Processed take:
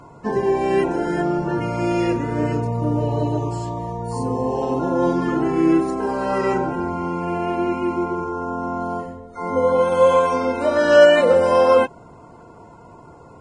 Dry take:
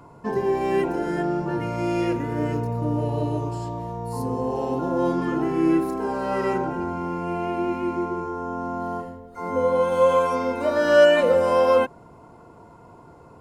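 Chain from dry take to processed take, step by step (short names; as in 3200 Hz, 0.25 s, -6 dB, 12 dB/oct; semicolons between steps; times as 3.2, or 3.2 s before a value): gain +3.5 dB; Vorbis 16 kbps 22050 Hz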